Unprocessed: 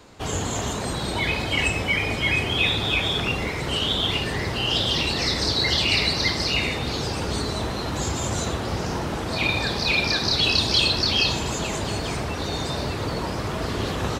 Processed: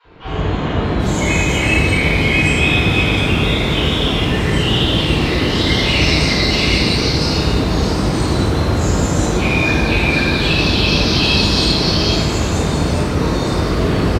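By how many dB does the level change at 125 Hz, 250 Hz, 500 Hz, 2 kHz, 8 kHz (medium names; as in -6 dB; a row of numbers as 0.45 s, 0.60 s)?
+12.0 dB, +12.5 dB, +9.5 dB, +7.5 dB, +5.0 dB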